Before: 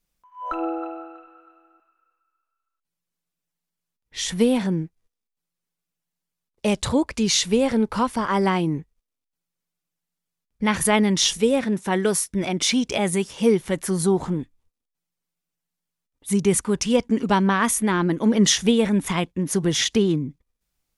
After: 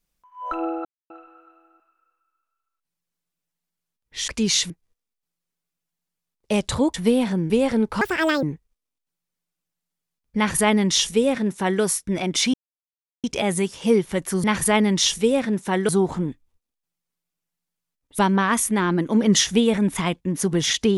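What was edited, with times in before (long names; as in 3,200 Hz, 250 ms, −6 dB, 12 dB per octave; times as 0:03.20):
0:00.85–0:01.10: silence
0:04.28–0:04.84: swap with 0:07.08–0:07.50
0:08.01–0:08.69: play speed 163%
0:10.63–0:12.08: duplicate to 0:14.00
0:12.80: splice in silence 0.70 s
0:16.30–0:17.30: remove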